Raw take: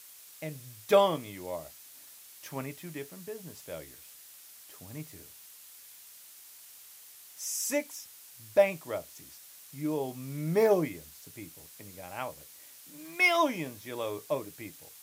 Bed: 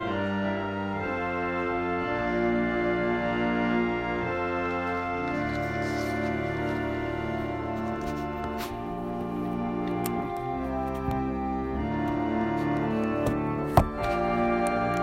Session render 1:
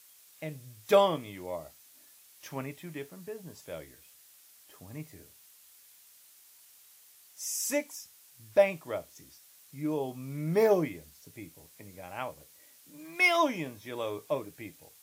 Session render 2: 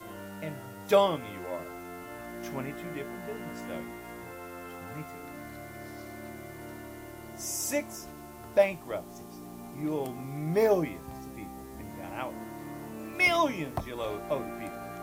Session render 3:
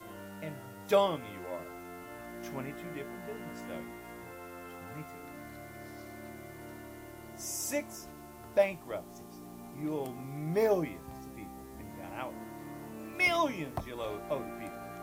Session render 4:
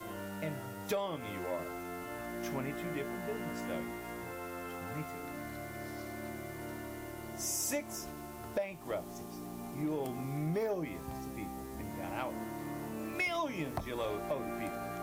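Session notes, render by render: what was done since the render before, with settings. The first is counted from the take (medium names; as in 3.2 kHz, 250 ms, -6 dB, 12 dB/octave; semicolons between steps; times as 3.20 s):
noise print and reduce 6 dB
add bed -14.5 dB
trim -3.5 dB
compression 12:1, threshold -34 dBFS, peak gain reduction 15 dB; waveshaping leveller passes 1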